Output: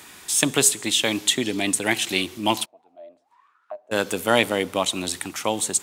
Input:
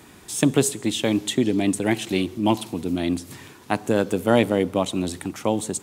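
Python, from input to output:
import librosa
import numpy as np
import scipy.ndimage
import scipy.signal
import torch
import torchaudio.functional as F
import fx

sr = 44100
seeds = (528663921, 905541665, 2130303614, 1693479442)

y = fx.tilt_shelf(x, sr, db=-8.0, hz=700.0)
y = fx.auto_wah(y, sr, base_hz=600.0, top_hz=1600.0, q=21.0, full_db=-24.0, direction='down', at=(2.64, 3.91), fade=0.02)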